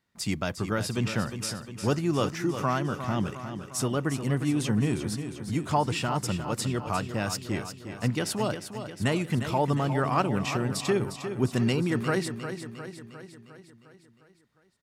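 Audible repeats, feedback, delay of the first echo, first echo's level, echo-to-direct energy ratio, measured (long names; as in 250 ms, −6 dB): 6, 57%, 355 ms, −9.5 dB, −8.0 dB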